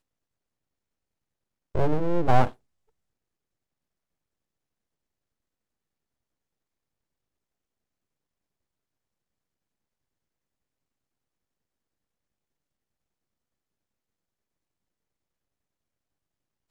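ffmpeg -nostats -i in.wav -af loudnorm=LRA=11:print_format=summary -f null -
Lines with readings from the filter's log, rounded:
Input Integrated:    -26.2 LUFS
Input True Peak:      -5.3 dBTP
Input LRA:             1.1 LU
Input Threshold:     -36.6 LUFS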